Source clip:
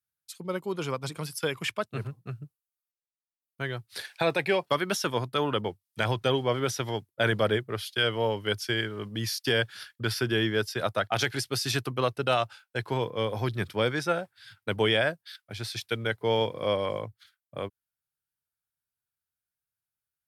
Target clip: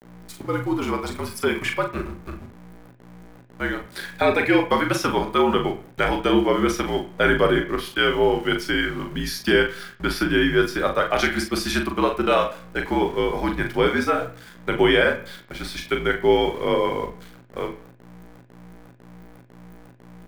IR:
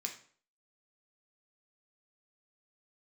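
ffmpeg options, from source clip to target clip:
-filter_complex "[0:a]aeval=exprs='val(0)+0.00562*(sin(2*PI*60*n/s)+sin(2*PI*2*60*n/s)/2+sin(2*PI*3*60*n/s)/3+sin(2*PI*4*60*n/s)/4+sin(2*PI*5*60*n/s)/5)':channel_layout=same,afreqshift=-61,aeval=exprs='val(0)*gte(abs(val(0)),0.00668)':channel_layout=same,asplit=2[link_01][link_02];[link_02]adelay=40,volume=-6dB[link_03];[link_01][link_03]amix=inputs=2:normalize=0,asplit=2[link_04][link_05];[1:a]atrim=start_sample=2205,lowpass=2200[link_06];[link_05][link_06]afir=irnorm=-1:irlink=0,volume=3.5dB[link_07];[link_04][link_07]amix=inputs=2:normalize=0,volume=1.5dB"

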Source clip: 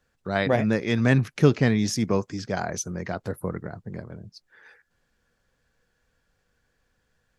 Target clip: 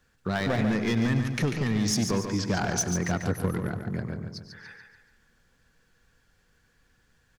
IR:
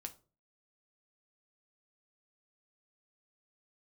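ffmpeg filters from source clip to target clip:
-filter_complex "[0:a]equalizer=frequency=590:width=1.7:gain=-6,acompressor=threshold=-25dB:ratio=12,asoftclip=type=hard:threshold=-25.5dB,aecho=1:1:143|286|429|572|715:0.447|0.192|0.0826|0.0355|0.0153,asplit=2[link_01][link_02];[1:a]atrim=start_sample=2205,adelay=99[link_03];[link_02][link_03]afir=irnorm=-1:irlink=0,volume=-11.5dB[link_04];[link_01][link_04]amix=inputs=2:normalize=0,volume=5dB"

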